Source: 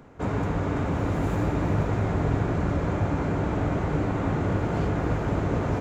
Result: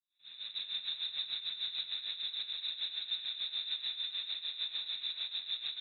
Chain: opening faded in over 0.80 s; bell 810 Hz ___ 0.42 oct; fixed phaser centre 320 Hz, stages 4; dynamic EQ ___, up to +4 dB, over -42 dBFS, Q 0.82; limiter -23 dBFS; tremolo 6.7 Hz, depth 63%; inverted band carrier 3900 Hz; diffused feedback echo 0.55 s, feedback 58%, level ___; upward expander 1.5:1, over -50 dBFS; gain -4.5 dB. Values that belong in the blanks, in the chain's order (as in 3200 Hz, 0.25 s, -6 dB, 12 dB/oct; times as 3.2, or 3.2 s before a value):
-4 dB, 250 Hz, -15.5 dB